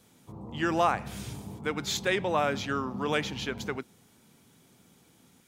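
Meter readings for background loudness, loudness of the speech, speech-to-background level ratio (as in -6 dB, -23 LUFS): -42.0 LUFS, -30.0 LUFS, 12.0 dB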